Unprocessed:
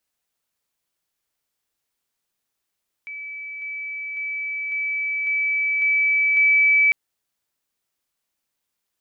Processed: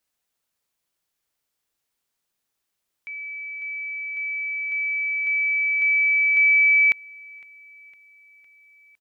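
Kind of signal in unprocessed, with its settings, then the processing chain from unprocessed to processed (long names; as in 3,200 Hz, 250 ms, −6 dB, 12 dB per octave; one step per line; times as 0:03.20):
level staircase 2,300 Hz −31 dBFS, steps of 3 dB, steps 7, 0.55 s 0.00 s
repeating echo 508 ms, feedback 58%, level −24 dB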